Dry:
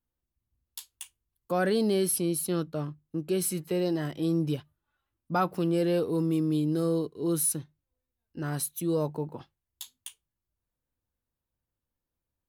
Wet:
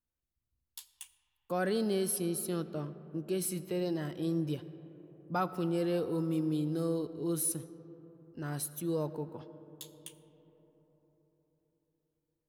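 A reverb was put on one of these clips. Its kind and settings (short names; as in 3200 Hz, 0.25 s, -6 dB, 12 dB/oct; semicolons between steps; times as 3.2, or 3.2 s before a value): digital reverb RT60 4.4 s, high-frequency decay 0.3×, pre-delay 40 ms, DRR 14 dB; gain -5.5 dB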